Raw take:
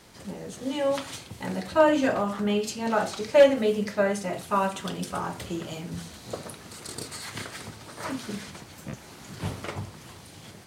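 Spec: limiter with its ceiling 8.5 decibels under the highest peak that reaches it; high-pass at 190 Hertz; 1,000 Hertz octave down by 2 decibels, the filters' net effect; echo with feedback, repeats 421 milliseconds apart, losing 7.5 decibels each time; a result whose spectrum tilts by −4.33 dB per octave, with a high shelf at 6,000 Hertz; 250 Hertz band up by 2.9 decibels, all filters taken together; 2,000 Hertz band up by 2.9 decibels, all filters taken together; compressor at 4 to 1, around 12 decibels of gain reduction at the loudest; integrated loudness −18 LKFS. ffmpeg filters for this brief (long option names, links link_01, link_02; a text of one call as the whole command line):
ffmpeg -i in.wav -af "highpass=190,equalizer=frequency=250:width_type=o:gain=5.5,equalizer=frequency=1000:width_type=o:gain=-4,equalizer=frequency=2000:width_type=o:gain=5.5,highshelf=frequency=6000:gain=-3,acompressor=threshold=-26dB:ratio=4,alimiter=level_in=1dB:limit=-24dB:level=0:latency=1,volume=-1dB,aecho=1:1:421|842|1263|1684|2105:0.422|0.177|0.0744|0.0312|0.0131,volume=17dB" out.wav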